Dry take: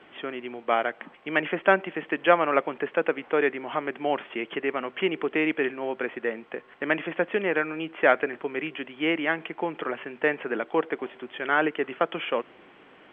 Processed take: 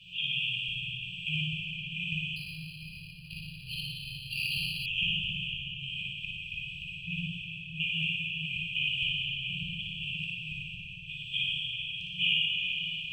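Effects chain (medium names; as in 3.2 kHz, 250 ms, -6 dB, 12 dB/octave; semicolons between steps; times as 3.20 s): dynamic bell 2.4 kHz, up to -4 dB, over -37 dBFS, Q 1.2; inverted gate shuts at -19 dBFS, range -33 dB; brick-wall FIR band-stop 170–2400 Hz; flutter echo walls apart 9.9 m, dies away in 0.65 s; plate-style reverb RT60 3.8 s, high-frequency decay 1×, DRR -6 dB; 2.36–4.86 s: decimation joined by straight lines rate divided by 6×; trim +8.5 dB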